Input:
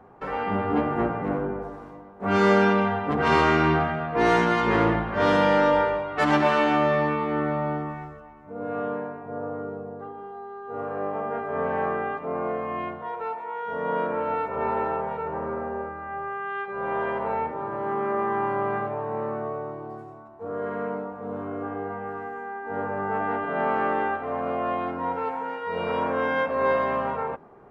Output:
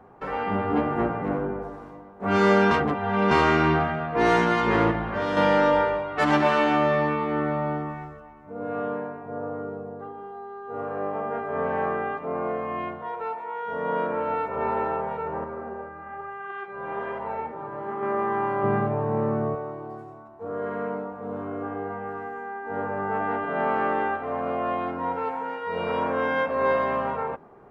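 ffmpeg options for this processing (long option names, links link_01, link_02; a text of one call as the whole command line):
ffmpeg -i in.wav -filter_complex "[0:a]asettb=1/sr,asplit=3[link_01][link_02][link_03];[link_01]atrim=end=4.914[link_04];[link_02]atrim=start=4.91:end=5.37,asetpts=PTS-STARTPTS,afade=type=in:duration=0.004:curve=qsin,afade=type=out:start_time=0.456:duration=0.004:curve=qsin,acompressor=threshold=-22dB:ratio=6:attack=3.2:release=140:knee=1:detection=peak[link_05];[link_03]atrim=start=5.366[link_06];[link_04][link_05]acrossfade=duration=0.004:curve1=hsin:curve2=qsin[link_07];[link_07][link_06]acrossfade=duration=0.004:curve1=qsin:curve2=hsin,asettb=1/sr,asplit=3[link_08][link_09][link_10];[link_08]atrim=end=15.444[link_11];[link_09]atrim=start=15.44:end=18.03,asetpts=PTS-STARTPTS,afade=type=in:duration=0.004:curve=qsin,afade=type=out:start_time=2.586:duration=0.004:curve=qsin,flanger=delay=1:depth=6:regen=68:speed=1.1:shape=sinusoidal[link_12];[link_10]atrim=start=18.026[link_13];[link_11][link_12]acrossfade=duration=0.004:curve1=hsin:curve2=qsin[link_14];[link_14][link_13]acrossfade=duration=0.004:curve1=qsin:curve2=hsin,asettb=1/sr,asplit=3[link_15][link_16][link_17];[link_15]atrim=end=18.634[link_18];[link_16]atrim=start=18.63:end=19.55,asetpts=PTS-STARTPTS,afade=type=in:duration=0.004:curve=qsin,afade=type=out:start_time=0.916:duration=0.004:curve=qsin,equalizer=frequency=150:width=0.58:gain=12[link_19];[link_17]atrim=start=19.546[link_20];[link_18][link_19]acrossfade=duration=0.004:curve1=hsin:curve2=qsin[link_21];[link_21][link_20]acrossfade=duration=0.004:curve1=qsin:curve2=hsin,asplit=3[link_22][link_23][link_24];[link_22]atrim=end=2.712[link_25];[link_23]atrim=start=2.708:end=3.312,asetpts=PTS-STARTPTS,areverse[link_26];[link_24]atrim=start=3.308[link_27];[link_25][link_26]acrossfade=duration=0.004:curve1=hsin:curve2=hsin[link_28];[link_28][link_27]acrossfade=duration=0.004:curve1=hsin:curve2=hsin" out.wav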